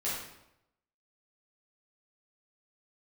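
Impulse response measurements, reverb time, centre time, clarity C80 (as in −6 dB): 0.85 s, 62 ms, 4.0 dB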